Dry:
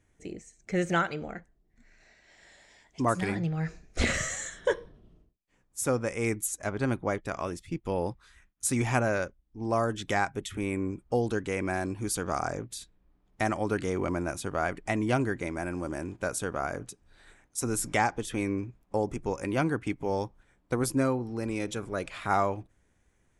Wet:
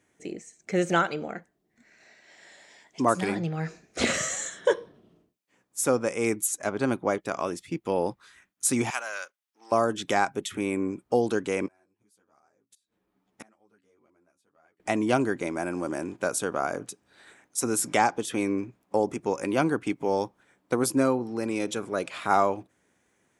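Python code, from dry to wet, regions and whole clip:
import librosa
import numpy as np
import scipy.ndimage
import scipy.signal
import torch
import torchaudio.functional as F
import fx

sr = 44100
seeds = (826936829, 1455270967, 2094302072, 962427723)

y = fx.chain(x, sr, fx.halfwave_gain(db=-3.0),
    fx.highpass(hz=1400.0, slope=12), at=(8.9, 9.72))
y = fx.chain(y, sr, fx.gate_flip(shuts_db=-30.0, range_db=-36),
    fx.ensemble(), at=(11.66, 14.8))
y = scipy.signal.sosfilt(scipy.signal.butter(2, 200.0, 'highpass', fs=sr, output='sos'), y)
y = fx.dynamic_eq(y, sr, hz=1900.0, q=2.6, threshold_db=-47.0, ratio=4.0, max_db=-5)
y = F.gain(torch.from_numpy(y), 4.5).numpy()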